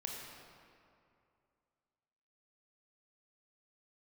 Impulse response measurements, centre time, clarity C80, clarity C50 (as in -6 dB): 104 ms, 2.0 dB, 0.5 dB